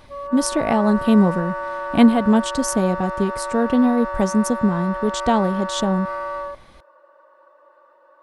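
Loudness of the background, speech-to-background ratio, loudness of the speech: −28.0 LKFS, 8.5 dB, −19.5 LKFS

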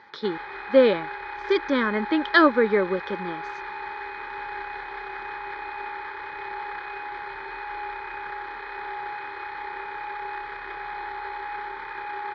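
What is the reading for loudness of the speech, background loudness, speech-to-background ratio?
−22.5 LKFS, −34.5 LKFS, 12.0 dB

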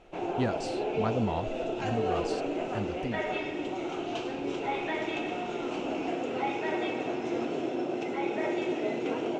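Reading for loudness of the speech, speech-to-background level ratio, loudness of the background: −35.5 LKFS, −3.0 dB, −32.5 LKFS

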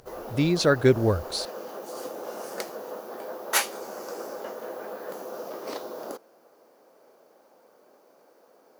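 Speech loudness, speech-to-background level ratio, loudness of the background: −23.5 LKFS, 11.0 dB, −34.5 LKFS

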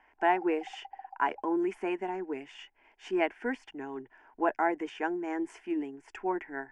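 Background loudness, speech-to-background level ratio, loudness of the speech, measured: −49.5 LKFS, 17.0 dB, −32.5 LKFS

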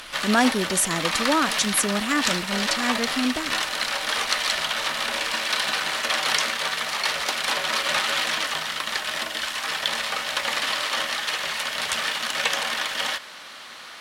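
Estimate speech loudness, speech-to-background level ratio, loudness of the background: −24.5 LKFS, −0.5 dB, −24.0 LKFS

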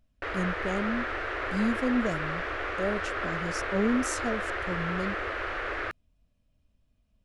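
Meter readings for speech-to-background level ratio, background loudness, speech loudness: 0.5 dB, −32.5 LKFS, −32.0 LKFS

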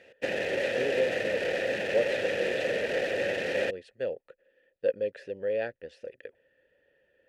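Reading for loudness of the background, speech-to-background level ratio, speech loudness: −30.0 LKFS, −4.5 dB, −34.5 LKFS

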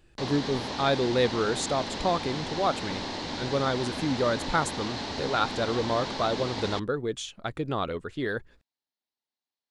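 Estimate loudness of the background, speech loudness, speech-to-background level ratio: −34.0 LKFS, −29.5 LKFS, 4.5 dB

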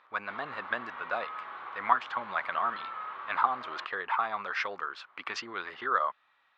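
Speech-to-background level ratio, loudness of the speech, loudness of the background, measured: 9.5 dB, −32.5 LKFS, −42.0 LKFS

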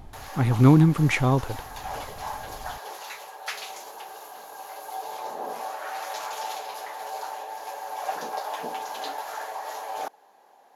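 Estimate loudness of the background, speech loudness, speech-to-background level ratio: −35.5 LKFS, −20.0 LKFS, 15.5 dB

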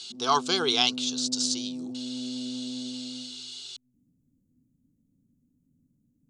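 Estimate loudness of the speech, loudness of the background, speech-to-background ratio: −28.0 LKFS, −37.0 LKFS, 9.0 dB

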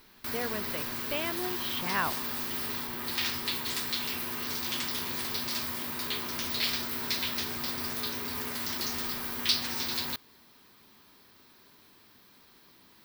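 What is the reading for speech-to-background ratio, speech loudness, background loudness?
−4.5 dB, −35.5 LKFS, −31.0 LKFS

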